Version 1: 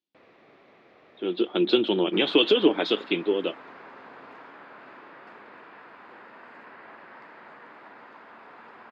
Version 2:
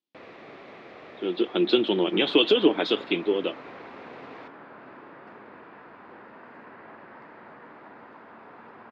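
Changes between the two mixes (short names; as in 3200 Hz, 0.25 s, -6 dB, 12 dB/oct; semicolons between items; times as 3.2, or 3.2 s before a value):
first sound +10.5 dB; second sound: add tilt -2.5 dB/oct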